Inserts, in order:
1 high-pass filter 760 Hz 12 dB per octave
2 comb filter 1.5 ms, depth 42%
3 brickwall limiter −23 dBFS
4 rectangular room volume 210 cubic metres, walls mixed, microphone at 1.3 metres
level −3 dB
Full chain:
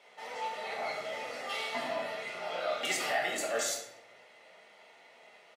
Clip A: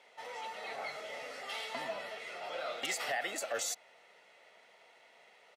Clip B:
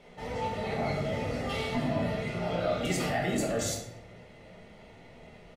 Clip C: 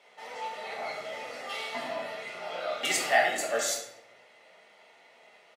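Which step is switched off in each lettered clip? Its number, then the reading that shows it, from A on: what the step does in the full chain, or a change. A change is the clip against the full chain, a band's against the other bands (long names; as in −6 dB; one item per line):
4, echo-to-direct ratio 2.0 dB to none audible
1, 125 Hz band +26.5 dB
3, change in crest factor +5.0 dB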